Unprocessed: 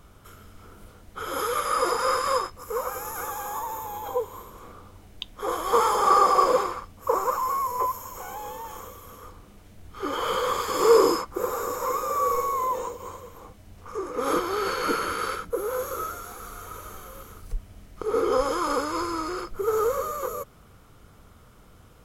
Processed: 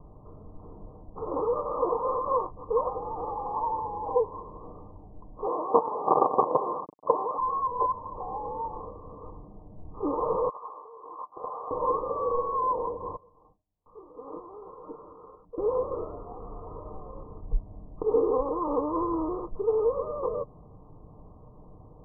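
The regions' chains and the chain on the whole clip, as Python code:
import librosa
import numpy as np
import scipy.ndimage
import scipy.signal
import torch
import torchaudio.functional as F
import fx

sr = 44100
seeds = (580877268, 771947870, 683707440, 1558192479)

y = fx.chain(x, sr, fx.quant_companded(bits=2),
    fx.highpass(hz=280.0, slope=12),
    fx.air_absorb(metres=210.0), at=(5.47, 7.39))
y = fx.chain(y, sr, fx.highpass(hz=1400.0, slope=12),
    fx.over_compress(threshold_db=-35.0, ratio=-0.5),
    fx.doppler_dist(depth_ms=0.25), at=(10.49, 11.71))
y = fx.chain(y, sr, fx.gate_hold(open_db=-35.0, close_db=-38.0, hold_ms=71.0, range_db=-21, attack_ms=1.4, release_ms=100.0),
    fx.pre_emphasis(coefficient=0.9), at=(13.16, 15.58))
y = scipy.signal.sosfilt(scipy.signal.butter(16, 1100.0, 'lowpass', fs=sr, output='sos'), y)
y = y + 0.33 * np.pad(y, (int(6.6 * sr / 1000.0), 0))[:len(y)]
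y = fx.rider(y, sr, range_db=3, speed_s=0.5)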